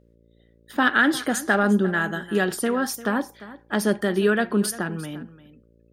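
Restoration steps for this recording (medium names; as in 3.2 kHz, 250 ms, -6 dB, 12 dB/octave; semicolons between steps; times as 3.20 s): de-hum 57.3 Hz, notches 10; inverse comb 348 ms -17 dB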